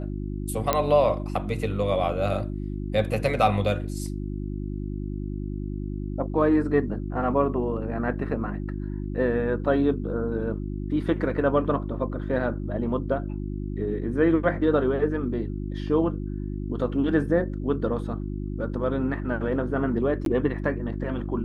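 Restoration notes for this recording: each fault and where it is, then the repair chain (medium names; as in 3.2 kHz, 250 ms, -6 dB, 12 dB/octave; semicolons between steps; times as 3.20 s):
hum 50 Hz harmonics 7 -31 dBFS
0.73 s: pop -6 dBFS
20.25–20.26 s: dropout 12 ms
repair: de-click; de-hum 50 Hz, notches 7; interpolate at 20.25 s, 12 ms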